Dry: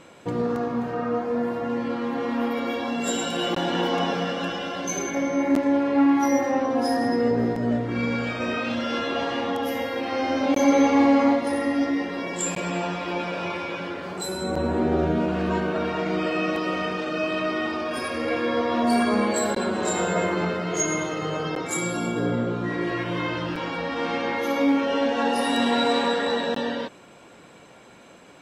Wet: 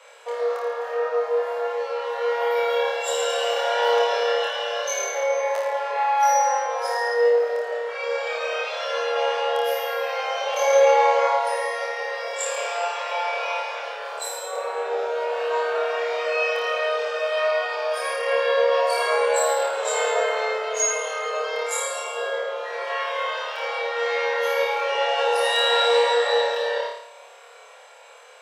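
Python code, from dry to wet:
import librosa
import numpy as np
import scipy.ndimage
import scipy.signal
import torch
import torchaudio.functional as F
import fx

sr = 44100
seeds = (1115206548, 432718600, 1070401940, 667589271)

y = scipy.signal.sosfilt(scipy.signal.butter(16, 450.0, 'highpass', fs=sr, output='sos'), x)
y = fx.room_flutter(y, sr, wall_m=4.7, rt60_s=0.69)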